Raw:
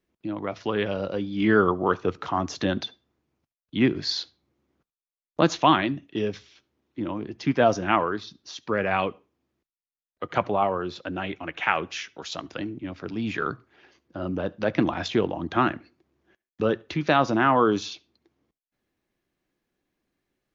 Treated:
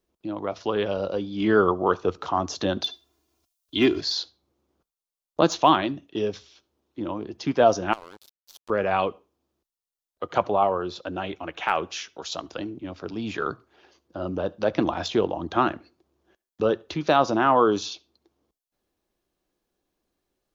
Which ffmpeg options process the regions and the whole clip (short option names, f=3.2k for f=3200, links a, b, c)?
-filter_complex "[0:a]asettb=1/sr,asplit=3[a][b][c];[a]atrim=end=2.844[d];[b]atrim=start=2.84:end=4.01,asetpts=PTS-STARTPTS,afade=t=in:d=0.004:c=qsin,afade=t=out:st=1.166:d=0.004:c=qsin,highshelf=f=2.1k:g=11.5,aecho=1:1:2.9:0.64,atrim=end_sample=51597[e];[c]atrim=start=4.006[f];[d][e]acrossfade=d=0.004:c1=hsin:c2=qsin[g];[g][f]acrossfade=d=0.004:c1=qsin:c2=hsin,asettb=1/sr,asplit=3[h][i][j];[h]atrim=end=7.934[k];[i]atrim=start=7.93:end=8.7,asetpts=PTS-STARTPTS,afade=t=in:d=0.004:c=qsin,afade=t=out:st=0.766:d=0.004:c=qsin,acompressor=threshold=-34dB:ratio=5:attack=3.2:release=140:knee=1:detection=peak,aeval=exprs='sgn(val(0))*max(abs(val(0))-0.015,0)':c=same[l];[j]atrim=start=8.696[m];[k][l]acrossfade=d=0.004:c1=hsin:c2=qsin[n];[n][m]acrossfade=d=0.004:c1=qsin:c2=hsin,deesser=0.6,equalizer=f=125:t=o:w=1:g=-8,equalizer=f=250:t=o:w=1:g=-5,equalizer=f=2k:t=o:w=1:g=-10,volume=4dB"